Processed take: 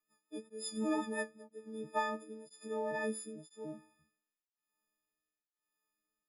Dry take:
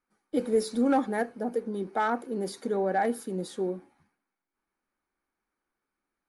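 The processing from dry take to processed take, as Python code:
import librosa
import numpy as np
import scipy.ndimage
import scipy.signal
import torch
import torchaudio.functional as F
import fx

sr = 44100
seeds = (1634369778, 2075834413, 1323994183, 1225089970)

y = fx.freq_snap(x, sr, grid_st=6)
y = fx.rotary_switch(y, sr, hz=5.5, then_hz=1.0, switch_at_s=1.3)
y = y * np.abs(np.cos(np.pi * 1.0 * np.arange(len(y)) / sr))
y = y * 10.0 ** (-7.0 / 20.0)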